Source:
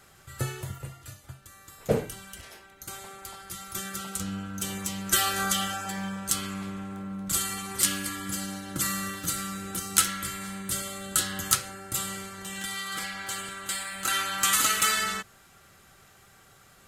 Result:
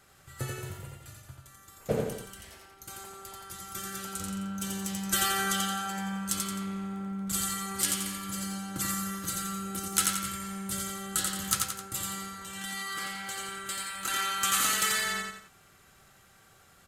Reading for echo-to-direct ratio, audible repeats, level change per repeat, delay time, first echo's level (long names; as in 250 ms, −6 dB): −2.0 dB, 3, −6.5 dB, 87 ms, −3.0 dB